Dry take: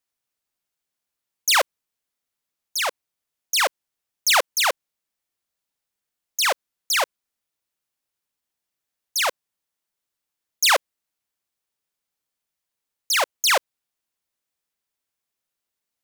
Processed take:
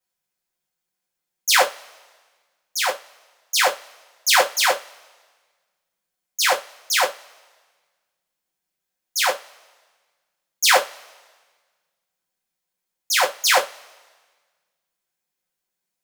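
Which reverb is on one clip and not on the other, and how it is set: two-slope reverb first 0.2 s, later 1.5 s, from -28 dB, DRR -6 dB; trim -4.5 dB

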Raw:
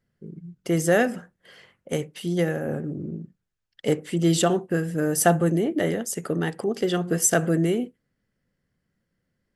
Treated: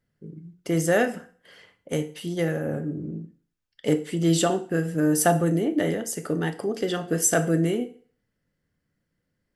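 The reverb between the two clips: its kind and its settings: FDN reverb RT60 0.46 s, low-frequency decay 0.85×, high-frequency decay 0.95×, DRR 8 dB; trim -1.5 dB

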